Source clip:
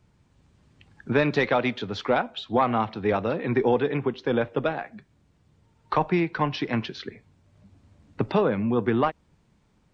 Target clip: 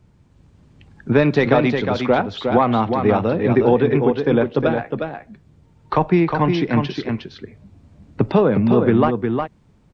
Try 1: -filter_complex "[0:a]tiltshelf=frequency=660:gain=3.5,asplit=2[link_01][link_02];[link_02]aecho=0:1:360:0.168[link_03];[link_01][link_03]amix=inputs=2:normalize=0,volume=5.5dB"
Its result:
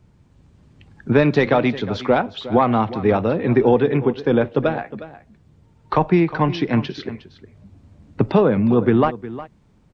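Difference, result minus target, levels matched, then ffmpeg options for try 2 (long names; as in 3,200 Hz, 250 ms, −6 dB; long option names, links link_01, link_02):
echo-to-direct −10 dB
-filter_complex "[0:a]tiltshelf=frequency=660:gain=3.5,asplit=2[link_01][link_02];[link_02]aecho=0:1:360:0.531[link_03];[link_01][link_03]amix=inputs=2:normalize=0,volume=5.5dB"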